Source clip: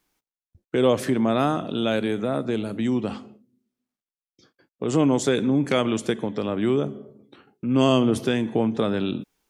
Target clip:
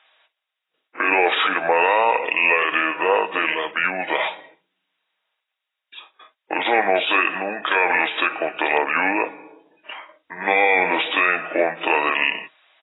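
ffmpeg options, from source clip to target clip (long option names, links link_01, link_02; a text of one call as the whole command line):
ffmpeg -i in.wav -af "highpass=frequency=910:width=0.5412,highpass=frequency=910:width=1.3066,equalizer=frequency=1300:width=1:gain=-6,aecho=1:1:4.7:0.33,asetrate=32667,aresample=44100,alimiter=level_in=26.5dB:limit=-1dB:release=50:level=0:latency=1,volume=-5dB" -ar 16000 -c:a aac -b:a 16k out.aac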